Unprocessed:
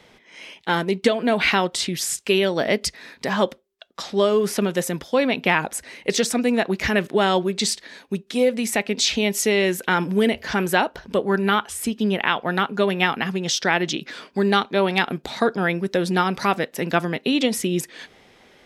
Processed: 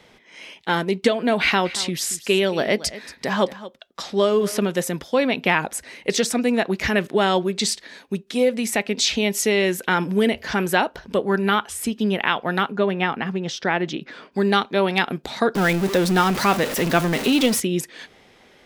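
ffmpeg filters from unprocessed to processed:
ffmpeg -i in.wav -filter_complex "[0:a]asettb=1/sr,asplit=3[link_01][link_02][link_03];[link_01]atrim=end=1.424[link_04];[link_02]atrim=start=1.42:end=4.59,asetpts=PTS-STARTPTS,afade=type=in:duration=0.004:curve=qsin,afade=type=out:start_time=3.166:duration=0.004:curve=qsin,aecho=1:1:229:0.15,atrim=end_sample=139797[link_05];[link_03]atrim=start=4.586[link_06];[link_04][link_05]acrossfade=duration=0.004:curve1=hsin:curve2=qsin[link_07];[link_07][link_06]acrossfade=duration=0.004:curve1=qsin:curve2=hsin,asettb=1/sr,asplit=3[link_08][link_09][link_10];[link_08]atrim=end=12.724[link_11];[link_09]atrim=start=12.72:end=14.32,asetpts=PTS-STARTPTS,afade=type=in:duration=0.004:curve=qsin,afade=type=out:start_time=1.596:duration=0.004:curve=qsin,lowpass=frequency=1800:poles=1[link_12];[link_10]atrim=start=14.316[link_13];[link_11][link_12]acrossfade=duration=0.004:curve1=hsin:curve2=qsin[link_14];[link_14][link_13]acrossfade=duration=0.004:curve1=qsin:curve2=hsin,asettb=1/sr,asplit=3[link_15][link_16][link_17];[link_15]atrim=end=15.554[link_18];[link_16]atrim=start=15.55:end=17.6,asetpts=PTS-STARTPTS,afade=type=in:duration=0.004:curve=qsin,afade=type=out:start_time=2.046:duration=0.004:curve=qsin,aeval=exprs='val(0)+0.5*0.0794*sgn(val(0))':channel_layout=same[link_19];[link_17]atrim=start=17.596[link_20];[link_18][link_19]acrossfade=duration=0.004:curve1=hsin:curve2=qsin[link_21];[link_21][link_20]acrossfade=duration=0.004:curve1=qsin:curve2=hsin" out.wav

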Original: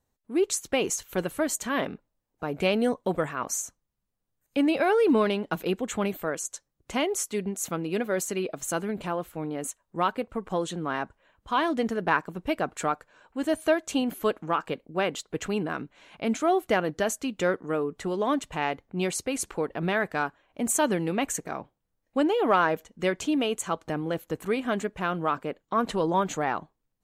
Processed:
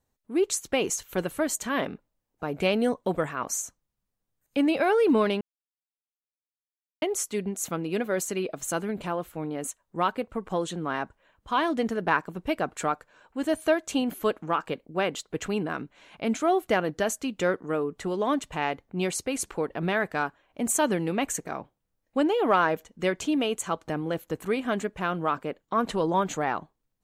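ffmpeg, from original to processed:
ffmpeg -i in.wav -filter_complex "[0:a]asplit=3[link_01][link_02][link_03];[link_01]atrim=end=5.41,asetpts=PTS-STARTPTS,afade=type=out:start_time=5.406:duration=0.004:curve=hsin[link_04];[link_02]atrim=start=5.41:end=7.02,asetpts=PTS-STARTPTS,volume=0[link_05];[link_03]atrim=start=7.02,asetpts=PTS-STARTPTS,afade=type=in:duration=0.004:curve=hsin[link_06];[link_04][link_05][link_06]concat=n=3:v=0:a=1" out.wav

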